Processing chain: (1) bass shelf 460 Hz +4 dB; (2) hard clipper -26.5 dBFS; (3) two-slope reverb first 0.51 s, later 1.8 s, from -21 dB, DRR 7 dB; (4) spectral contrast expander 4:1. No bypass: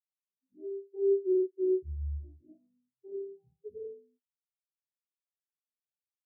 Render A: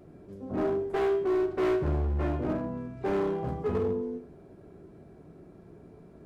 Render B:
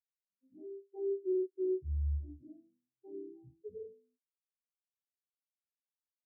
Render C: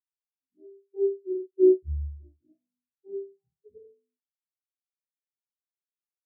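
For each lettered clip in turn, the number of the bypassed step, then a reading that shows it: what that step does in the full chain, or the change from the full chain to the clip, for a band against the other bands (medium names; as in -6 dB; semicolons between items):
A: 4, crest factor change -5.0 dB; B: 3, loudness change -5.0 LU; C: 2, distortion -8 dB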